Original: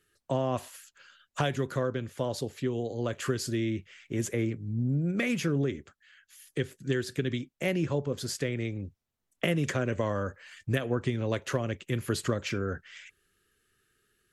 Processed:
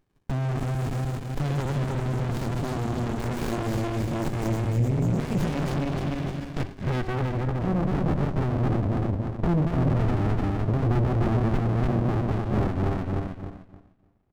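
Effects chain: backward echo that repeats 150 ms, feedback 59%, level -0.5 dB; dynamic bell 390 Hz, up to +4 dB, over -43 dBFS, Q 3.7; in parallel at -1 dB: compression, threshold -33 dBFS, peak gain reduction 14.5 dB; on the sum: waveshaping leveller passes 2; peak limiter -17.5 dBFS, peak gain reduction 8 dB; low-pass sweep 7.9 kHz -> 610 Hz, 5.27–8.09 s; on a send: delay 317 ms -18 dB; on the sum: sliding maximum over 65 samples

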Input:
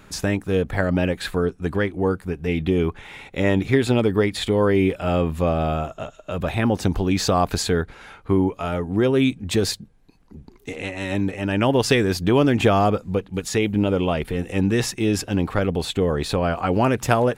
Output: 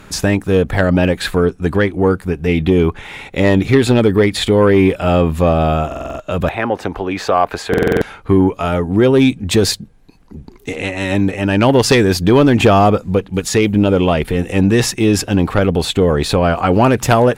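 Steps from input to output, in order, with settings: 6.49–7.73 s: three-band isolator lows -15 dB, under 380 Hz, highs -15 dB, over 2.6 kHz; sine folder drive 6 dB, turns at -1.5 dBFS; buffer glitch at 5.87/7.69 s, samples 2048, times 6; trim -1.5 dB

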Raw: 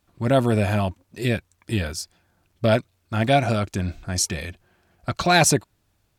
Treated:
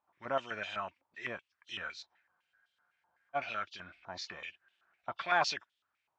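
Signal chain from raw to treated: knee-point frequency compression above 2.6 kHz 1.5:1; spectral freeze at 2.30 s, 1.05 s; step-sequenced band-pass 7.9 Hz 920–3300 Hz

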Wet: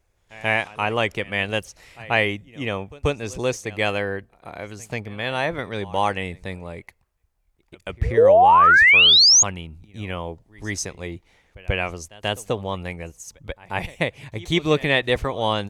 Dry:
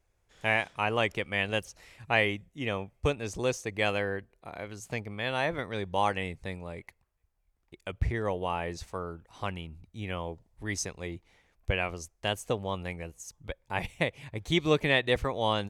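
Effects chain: painted sound rise, 8.17–9.43 s, 430–6900 Hz -18 dBFS; pre-echo 136 ms -21 dB; trim +5.5 dB

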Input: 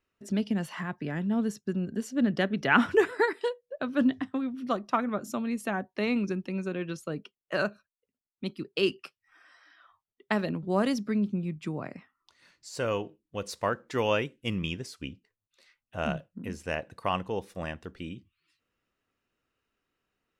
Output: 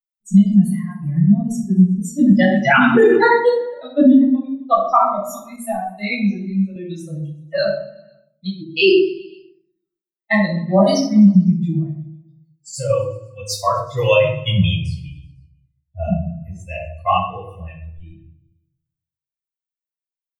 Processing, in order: expander on every frequency bin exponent 3; 14.79–16.15 s: low-pass 2.4 kHz -> 1.3 kHz 6 dB/octave; feedback delay 125 ms, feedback 60%, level -23.5 dB; simulated room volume 770 m³, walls furnished, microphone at 6.9 m; loudness maximiser +15 dB; 5.56–6.76 s: three-phase chorus; trim -2.5 dB

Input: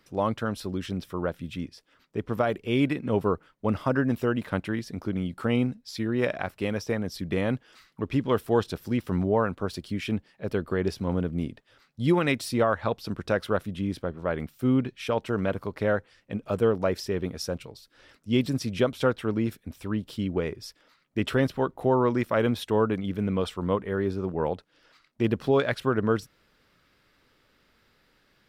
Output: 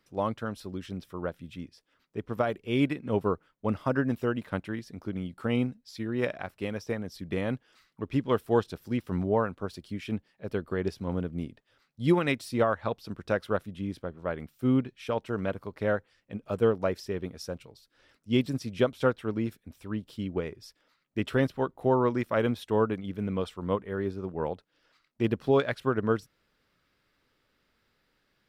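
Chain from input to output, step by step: upward expansion 1.5:1, over -33 dBFS

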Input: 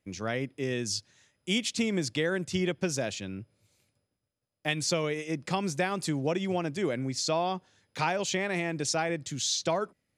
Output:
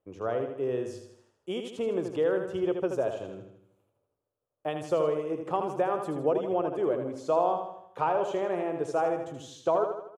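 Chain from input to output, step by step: FFT filter 120 Hz 0 dB, 210 Hz -5 dB, 430 Hz +12 dB, 770 Hz +9 dB, 1.2 kHz +9 dB, 2.1 kHz -11 dB, 3 kHz -4 dB, 4.5 kHz -19 dB, 13 kHz -6 dB; on a send: feedback delay 79 ms, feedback 50%, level -6.5 dB; on the sum: trim -6.5 dB

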